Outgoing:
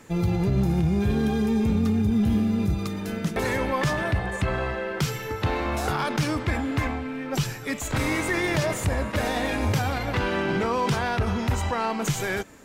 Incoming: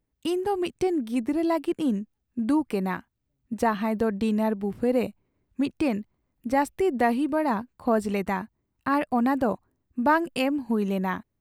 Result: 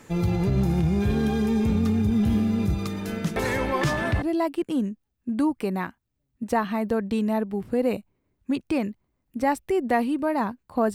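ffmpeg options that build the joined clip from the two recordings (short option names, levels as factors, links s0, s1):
-filter_complex "[1:a]asplit=2[s0][s1];[0:a]apad=whole_dur=10.94,atrim=end=10.94,atrim=end=4.222[s2];[s1]atrim=start=1.318:end=8.04[s3];[s0]atrim=start=0.84:end=1.32,asetpts=PTS-STARTPTS,volume=0.335,afade=t=in:d=0.004:c=hsin,afade=t=out:st=0.476:d=0.004:c=hsin,adelay=3740[s4];[s2][s3]acrossfade=d=0.004:c1=hsin:c2=hsin[s5];[s5][s4]amix=inputs=2:normalize=0"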